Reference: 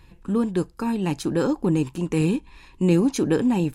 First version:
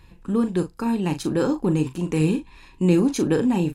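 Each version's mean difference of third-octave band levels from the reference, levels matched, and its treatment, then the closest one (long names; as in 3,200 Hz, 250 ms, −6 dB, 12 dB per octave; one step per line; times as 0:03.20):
1.0 dB: double-tracking delay 39 ms −9.5 dB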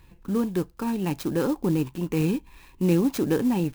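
3.0 dB: converter with an unsteady clock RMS 0.032 ms
level −2.5 dB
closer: first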